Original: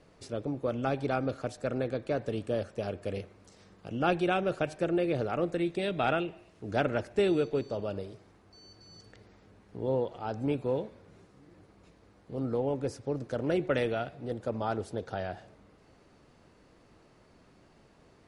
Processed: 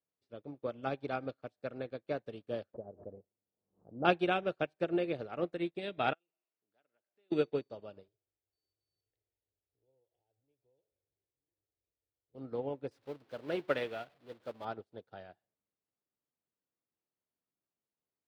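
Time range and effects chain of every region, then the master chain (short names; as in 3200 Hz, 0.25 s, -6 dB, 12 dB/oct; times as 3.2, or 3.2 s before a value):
2.74–4.05 inverse Chebyshev low-pass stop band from 4900 Hz, stop band 80 dB + backwards sustainer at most 60 dB/s
6.13–7.32 HPF 510 Hz 6 dB/oct + compressor 2:1, threshold -56 dBFS
8.08–12.35 compressor, threshold -43 dBFS + low shelf 150 Hz +11.5 dB + fixed phaser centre 500 Hz, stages 4
12.91–14.65 zero-crossing step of -37 dBFS + low shelf 340 Hz -6 dB
whole clip: HPF 130 Hz 6 dB/oct; resonant high shelf 5200 Hz -7.5 dB, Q 1.5; upward expander 2.5:1, over -50 dBFS; gain +2 dB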